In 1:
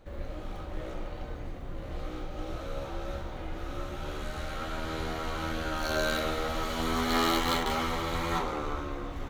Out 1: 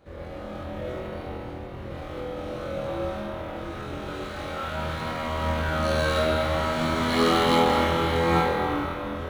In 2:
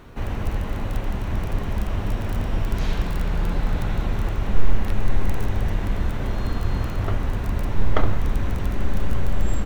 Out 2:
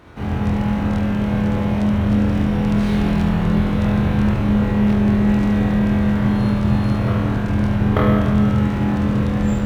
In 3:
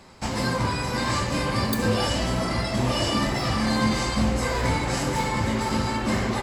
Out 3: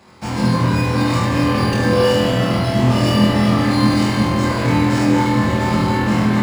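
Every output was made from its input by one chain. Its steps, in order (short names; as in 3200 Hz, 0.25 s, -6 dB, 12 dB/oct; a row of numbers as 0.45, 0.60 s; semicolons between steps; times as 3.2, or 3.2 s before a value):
HPF 68 Hz 12 dB/oct; spring tank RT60 2.3 s, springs 38/58 ms, chirp 25 ms, DRR -0.5 dB; dynamic EQ 170 Hz, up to +6 dB, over -39 dBFS, Q 0.84; flutter echo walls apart 4.1 m, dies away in 0.54 s; decimation joined by straight lines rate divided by 3×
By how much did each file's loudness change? +7.0, +9.0, +8.5 LU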